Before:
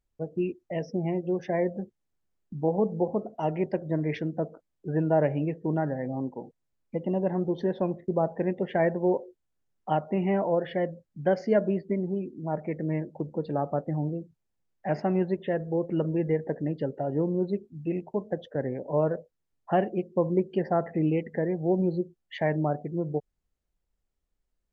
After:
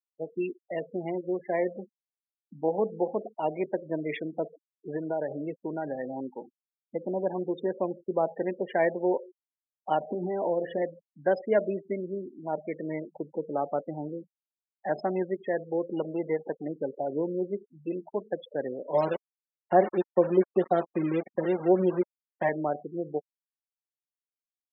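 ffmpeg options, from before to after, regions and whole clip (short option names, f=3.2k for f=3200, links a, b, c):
-filter_complex "[0:a]asettb=1/sr,asplit=3[a][b][c];[a]atrim=end=4.964[d];[b]atrim=start=4.96:end=5.98,asetpts=PTS-STARTPTS,afade=t=in:d=0.004:c=qsin,afade=t=out:st=1.016:d=0.004:c=qsin,equalizer=f=1.1k:t=o:w=0.3:g=-2,acompressor=threshold=-24dB:ratio=10:attack=3.2:release=140:knee=1:detection=peak,aeval=exprs='val(0)*gte(abs(val(0)),0.00891)':c=same[e];[c]atrim=start=5.976[f];[d][e]acrossfade=d=0.004:c1=hsin:c2=qsin[g];[g][f]acrossfade=d=0.004:c1=qsin:c2=hsin,asettb=1/sr,asplit=3[h][i][j];[h]atrim=end=10.004[k];[i]atrim=start=10:end=10.82,asetpts=PTS-STARTPTS,afade=t=in:d=0.004:c=qsin,afade=t=out:st=0.816:d=0.004:c=qsin,tiltshelf=f=1.2k:g=6.5,acompressor=threshold=-22dB:ratio=16:attack=3.2:release=140:knee=1:detection=peak,asplit=2[l][m];[m]adelay=23,volume=-10.5dB[n];[l][n]amix=inputs=2:normalize=0,atrim=end_sample=36162[o];[j]atrim=start=10.816[p];[k][o]acrossfade=d=0.004:c1=hsin:c2=qsin[q];[q][p]acrossfade=d=0.004:c1=qsin:c2=hsin,asettb=1/sr,asplit=3[r][s][t];[r]atrim=end=15.934[u];[s]atrim=start=15.93:end=16.66,asetpts=PTS-STARTPTS,afade=t=in:d=0.004:c=qsin,afade=t=out:st=0.726:d=0.004:c=qsin,acompressor=mode=upward:threshold=-28dB:ratio=2.5:attack=3.2:release=140:knee=2.83:detection=peak,aeval=exprs='sgn(val(0))*max(abs(val(0))-0.00891,0)':c=same[v];[t]atrim=start=16.656[w];[u][v]acrossfade=d=0.004:c1=hsin:c2=qsin[x];[x][w]acrossfade=d=0.004:c1=qsin:c2=hsin,asettb=1/sr,asplit=3[y][z][aa];[y]atrim=end=18.944[ab];[z]atrim=start=18.94:end=22.49,asetpts=PTS-STARTPTS,afade=t=in:d=0.004:c=qsin,afade=t=out:st=3.546:d=0.004:c=qsin,lowpass=1.6k,aecho=1:1:5.4:0.89,atrim=end_sample=156555,aeval=exprs='val(0)*gte(abs(val(0)),0.0299)':c=same[ac];[aa]atrim=start=22.486[ad];[ab][ac]acrossfade=d=0.004:c1=hsin:c2=qsin[ae];[ae][ad]acrossfade=d=0.004:c1=qsin:c2=hsin,afftfilt=real='re*gte(hypot(re,im),0.02)':imag='im*gte(hypot(re,im),0.02)':win_size=1024:overlap=0.75,highpass=310,highshelf=f=3.6k:g=10.5"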